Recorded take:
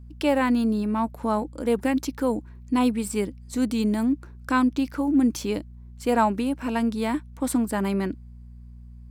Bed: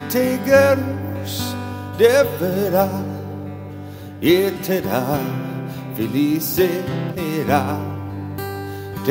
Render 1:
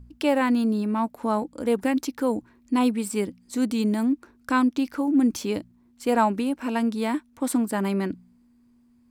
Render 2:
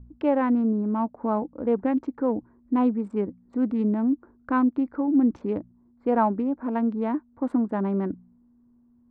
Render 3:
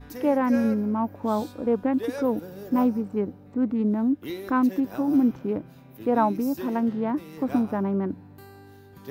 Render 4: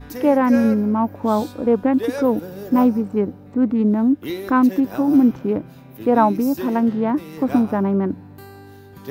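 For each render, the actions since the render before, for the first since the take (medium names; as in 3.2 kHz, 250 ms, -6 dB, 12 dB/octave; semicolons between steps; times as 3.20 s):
de-hum 60 Hz, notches 3
local Wiener filter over 15 samples; low-pass 1.3 kHz 12 dB/octave
add bed -20 dB
trim +6.5 dB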